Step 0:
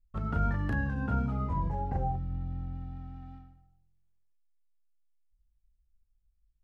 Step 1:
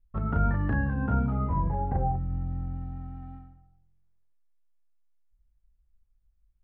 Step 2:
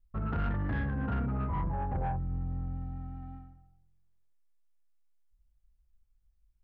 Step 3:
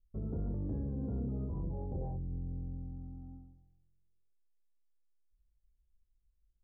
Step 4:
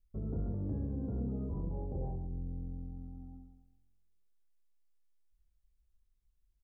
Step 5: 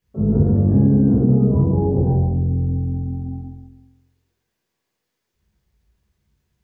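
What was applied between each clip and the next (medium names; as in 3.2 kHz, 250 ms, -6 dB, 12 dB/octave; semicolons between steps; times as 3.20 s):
low-pass 1.8 kHz 12 dB/octave; trim +4 dB
saturation -25.5 dBFS, distortion -12 dB; trim -1.5 dB
four-pole ladder low-pass 540 Hz, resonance 40%; trim +3 dB
feedback delay 133 ms, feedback 27%, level -9.5 dB
reverberation RT60 0.85 s, pre-delay 19 ms, DRR -4.5 dB; trim +5.5 dB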